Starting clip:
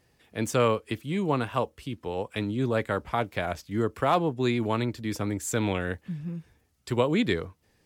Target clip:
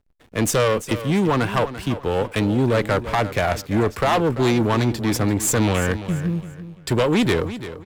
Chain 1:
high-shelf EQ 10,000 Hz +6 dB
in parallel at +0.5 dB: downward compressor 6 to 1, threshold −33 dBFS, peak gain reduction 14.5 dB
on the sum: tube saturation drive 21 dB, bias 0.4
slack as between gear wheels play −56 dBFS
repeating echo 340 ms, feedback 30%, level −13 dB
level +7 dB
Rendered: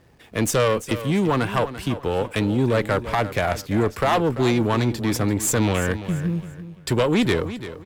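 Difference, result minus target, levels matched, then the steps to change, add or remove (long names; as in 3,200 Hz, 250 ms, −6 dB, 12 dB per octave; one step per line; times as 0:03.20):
downward compressor: peak gain reduction +8 dB; slack as between gear wheels: distortion −8 dB
change: downward compressor 6 to 1, threshold −23.5 dBFS, peak gain reduction 7 dB
change: slack as between gear wheels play −45.5 dBFS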